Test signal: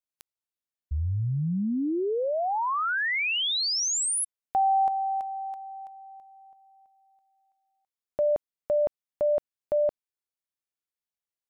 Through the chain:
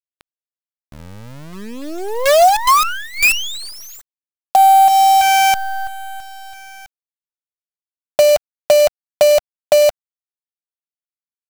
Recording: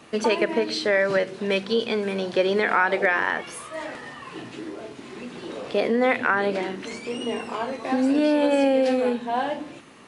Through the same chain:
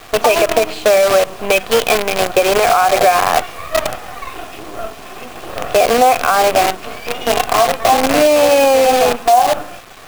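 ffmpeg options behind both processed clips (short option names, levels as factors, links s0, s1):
-filter_complex "[0:a]acrossover=split=4600[s0][s1];[s1]acompressor=threshold=0.0178:ratio=4:attack=1:release=60[s2];[s0][s2]amix=inputs=2:normalize=0,asplit=3[s3][s4][s5];[s3]bandpass=f=730:t=q:w=8,volume=1[s6];[s4]bandpass=f=1090:t=q:w=8,volume=0.501[s7];[s5]bandpass=f=2440:t=q:w=8,volume=0.355[s8];[s6][s7][s8]amix=inputs=3:normalize=0,acrusher=bits=7:dc=4:mix=0:aa=0.000001,acompressor=threshold=0.0158:ratio=3:attack=95:release=167:knee=1:detection=rms,alimiter=level_in=20:limit=0.891:release=50:level=0:latency=1,volume=0.891"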